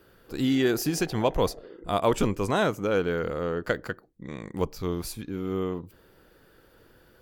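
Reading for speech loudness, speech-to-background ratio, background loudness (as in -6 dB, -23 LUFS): -28.0 LUFS, 19.0 dB, -47.0 LUFS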